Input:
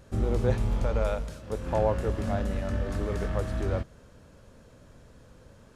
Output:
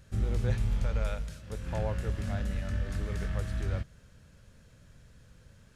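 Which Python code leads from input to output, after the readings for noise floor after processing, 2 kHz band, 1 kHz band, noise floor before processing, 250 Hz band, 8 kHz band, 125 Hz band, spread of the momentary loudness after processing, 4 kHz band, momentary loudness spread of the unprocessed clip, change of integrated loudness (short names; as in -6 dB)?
-58 dBFS, -2.5 dB, -9.5 dB, -55 dBFS, -6.5 dB, -1.5 dB, -1.5 dB, 8 LU, -1.5 dB, 7 LU, -4.0 dB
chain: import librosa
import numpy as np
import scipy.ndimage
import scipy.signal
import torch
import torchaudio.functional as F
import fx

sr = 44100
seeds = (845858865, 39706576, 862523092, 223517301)

y = fx.band_shelf(x, sr, hz=530.0, db=-9.0, octaves=2.6)
y = F.gain(torch.from_numpy(y), -1.5).numpy()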